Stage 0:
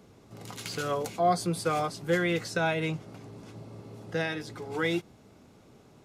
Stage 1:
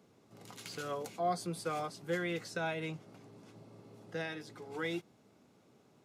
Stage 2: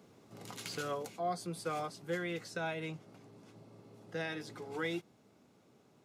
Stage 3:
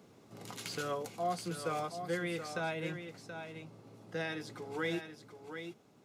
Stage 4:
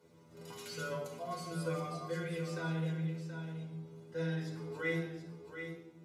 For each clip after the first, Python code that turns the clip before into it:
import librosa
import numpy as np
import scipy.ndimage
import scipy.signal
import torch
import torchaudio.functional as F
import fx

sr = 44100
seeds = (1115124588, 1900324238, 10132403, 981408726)

y1 = scipy.signal.sosfilt(scipy.signal.butter(2, 130.0, 'highpass', fs=sr, output='sos'), x)
y1 = F.gain(torch.from_numpy(y1), -8.5).numpy()
y2 = fx.rider(y1, sr, range_db=5, speed_s=0.5)
y3 = y2 + 10.0 ** (-8.5 / 20.0) * np.pad(y2, (int(728 * sr / 1000.0), 0))[:len(y2)]
y3 = F.gain(torch.from_numpy(y3), 1.0).numpy()
y4 = fx.stiff_resonator(y3, sr, f0_hz=80.0, decay_s=0.34, stiffness=0.002)
y4 = fx.room_shoebox(y4, sr, seeds[0], volume_m3=3900.0, walls='furnished', distance_m=4.8)
y4 = F.gain(torch.from_numpy(y4), 2.0).numpy()